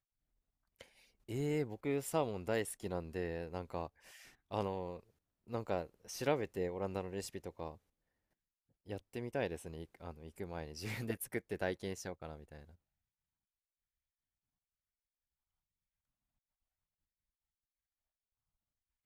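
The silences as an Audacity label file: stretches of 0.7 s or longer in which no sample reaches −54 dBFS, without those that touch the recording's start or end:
7.760000	8.870000	silence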